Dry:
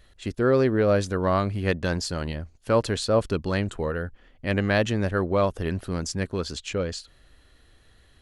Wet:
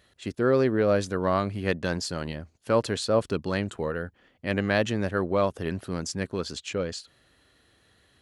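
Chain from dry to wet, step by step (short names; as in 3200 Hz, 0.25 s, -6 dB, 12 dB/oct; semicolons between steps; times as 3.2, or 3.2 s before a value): HPF 110 Hz 12 dB/oct; gain -1.5 dB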